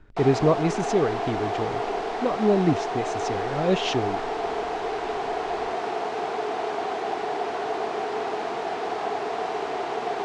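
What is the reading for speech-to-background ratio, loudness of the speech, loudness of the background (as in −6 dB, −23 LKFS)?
3.0 dB, −25.5 LKFS, −28.5 LKFS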